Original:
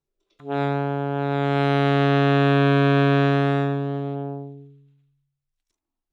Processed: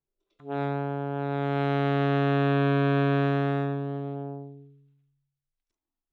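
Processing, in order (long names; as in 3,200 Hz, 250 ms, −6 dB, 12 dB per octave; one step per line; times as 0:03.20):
high-shelf EQ 3,900 Hz −9 dB
level −5.5 dB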